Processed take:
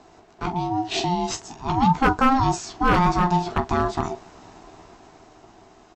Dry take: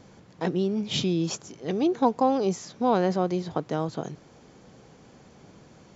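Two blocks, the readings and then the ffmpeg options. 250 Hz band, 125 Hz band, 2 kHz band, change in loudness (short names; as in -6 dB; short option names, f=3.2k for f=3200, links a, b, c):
+2.0 dB, +6.0 dB, +13.0 dB, +4.0 dB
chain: -filter_complex "[0:a]dynaudnorm=f=250:g=11:m=7dB,asplit=2[a][b];[b]aecho=0:1:14|45:0.473|0.224[c];[a][c]amix=inputs=2:normalize=0,aeval=exprs='0.355*(abs(mod(val(0)/0.355+3,4)-2)-1)':c=same,acontrast=29,aeval=exprs='val(0)*sin(2*PI*530*n/s)':c=same,volume=-2.5dB"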